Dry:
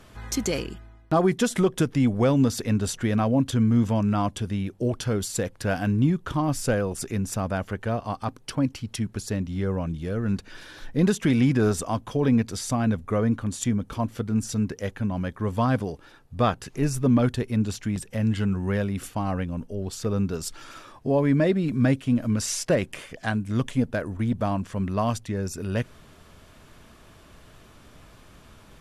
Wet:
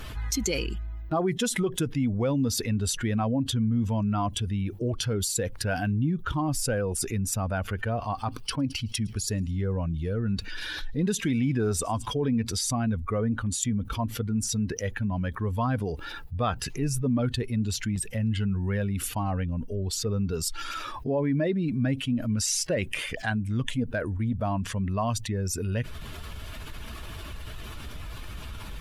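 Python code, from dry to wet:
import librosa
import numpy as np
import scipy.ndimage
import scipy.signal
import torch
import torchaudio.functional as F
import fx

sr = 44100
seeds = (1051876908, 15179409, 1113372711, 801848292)

y = fx.echo_wet_highpass(x, sr, ms=109, feedback_pct=59, hz=3300.0, wet_db=-17.5, at=(7.35, 12.17))
y = fx.bin_expand(y, sr, power=1.5)
y = fx.env_flatten(y, sr, amount_pct=70)
y = y * librosa.db_to_amplitude(-5.5)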